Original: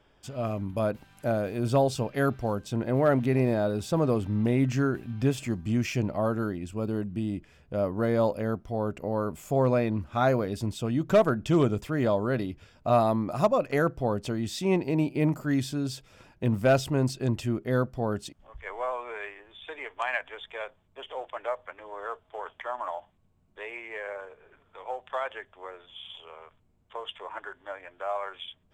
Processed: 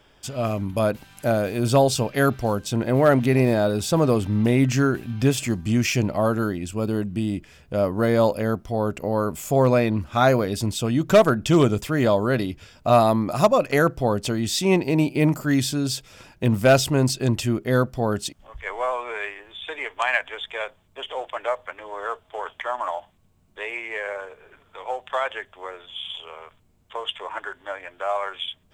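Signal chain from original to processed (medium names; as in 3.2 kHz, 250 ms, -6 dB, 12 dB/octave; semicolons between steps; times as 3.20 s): treble shelf 2.6 kHz +8 dB; trim +5.5 dB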